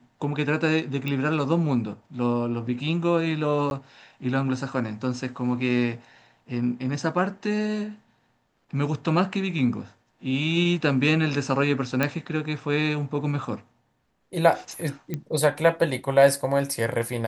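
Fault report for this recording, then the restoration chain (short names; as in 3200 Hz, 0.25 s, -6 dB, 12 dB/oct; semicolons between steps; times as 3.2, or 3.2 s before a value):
1.08 pop -17 dBFS
3.7–3.71 gap 11 ms
12.03 pop -9 dBFS
15.14 pop -16 dBFS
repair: de-click; interpolate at 3.7, 11 ms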